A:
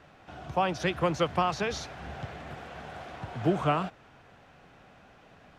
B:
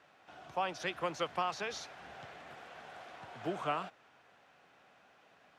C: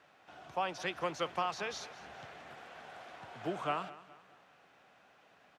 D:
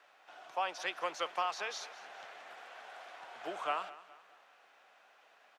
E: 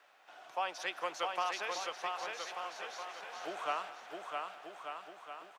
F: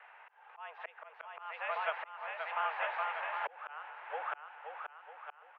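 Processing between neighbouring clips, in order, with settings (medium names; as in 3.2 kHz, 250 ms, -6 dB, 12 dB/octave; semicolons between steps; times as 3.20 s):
high-pass 590 Hz 6 dB/octave; trim -5.5 dB
feedback delay 209 ms, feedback 43%, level -17.5 dB
high-pass 560 Hz 12 dB/octave; trim +1 dB
treble shelf 10 kHz +5.5 dB; on a send: bouncing-ball echo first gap 660 ms, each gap 0.8×, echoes 5; on the sum: trim -1 dB
slow attack 685 ms; mistuned SSB +140 Hz 270–2500 Hz; trim +9 dB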